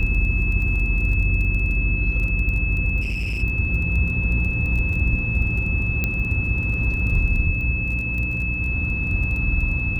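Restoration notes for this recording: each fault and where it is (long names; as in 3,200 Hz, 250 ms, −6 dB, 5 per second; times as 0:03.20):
surface crackle 20 per second −29 dBFS
mains hum 60 Hz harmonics 5 −27 dBFS
whistle 2,600 Hz −25 dBFS
0:03.01–0:03.43: clipping −21.5 dBFS
0:06.04: click −9 dBFS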